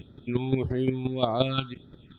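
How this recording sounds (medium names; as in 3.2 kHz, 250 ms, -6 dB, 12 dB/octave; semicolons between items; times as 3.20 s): phasing stages 6, 1.7 Hz, lowest notch 500–2700 Hz; chopped level 5.7 Hz, depth 65%, duty 10%; Opus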